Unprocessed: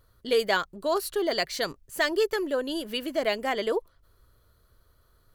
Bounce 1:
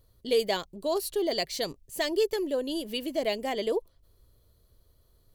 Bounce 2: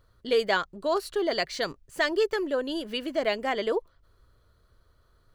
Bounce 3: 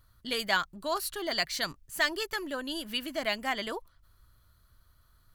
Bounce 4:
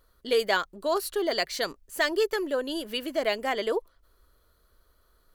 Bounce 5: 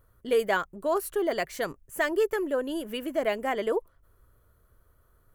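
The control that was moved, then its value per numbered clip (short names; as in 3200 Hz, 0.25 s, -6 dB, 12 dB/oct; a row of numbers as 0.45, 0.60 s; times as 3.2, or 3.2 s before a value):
bell, frequency: 1400, 14000, 450, 110, 4300 Hz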